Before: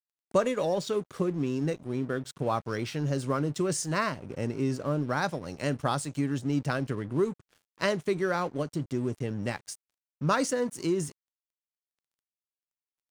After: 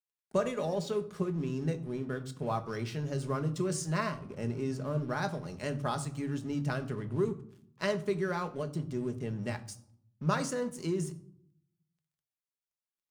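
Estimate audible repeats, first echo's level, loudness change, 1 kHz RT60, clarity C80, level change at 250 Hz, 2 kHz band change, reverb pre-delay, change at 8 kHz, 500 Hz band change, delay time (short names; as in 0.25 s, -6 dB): none, none, -4.0 dB, 0.65 s, 18.5 dB, -4.5 dB, -5.0 dB, 5 ms, -5.5 dB, -4.5 dB, none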